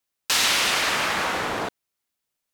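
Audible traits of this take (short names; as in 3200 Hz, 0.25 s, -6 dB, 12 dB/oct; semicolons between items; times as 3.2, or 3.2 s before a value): noise floor -82 dBFS; spectral tilt -2.0 dB/oct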